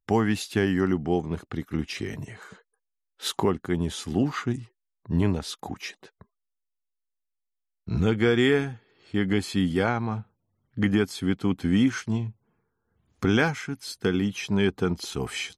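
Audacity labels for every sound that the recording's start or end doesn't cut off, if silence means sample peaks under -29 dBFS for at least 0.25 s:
3.240000	4.580000	sound
5.100000	5.880000	sound
7.890000	8.700000	sound
9.140000	10.200000	sound
10.780000	12.280000	sound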